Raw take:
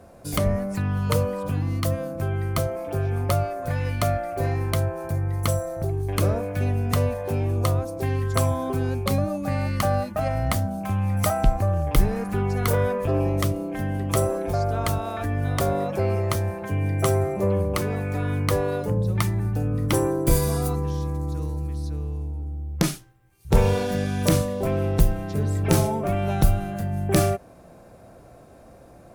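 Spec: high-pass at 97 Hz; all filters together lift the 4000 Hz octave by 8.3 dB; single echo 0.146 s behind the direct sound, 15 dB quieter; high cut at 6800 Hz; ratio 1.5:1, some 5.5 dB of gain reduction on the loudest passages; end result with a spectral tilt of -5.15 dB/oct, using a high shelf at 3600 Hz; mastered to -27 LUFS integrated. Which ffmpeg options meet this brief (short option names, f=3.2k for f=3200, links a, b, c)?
-af "highpass=97,lowpass=6.8k,highshelf=f=3.6k:g=8,equalizer=f=4k:t=o:g=5.5,acompressor=threshold=-33dB:ratio=1.5,aecho=1:1:146:0.178,volume=3dB"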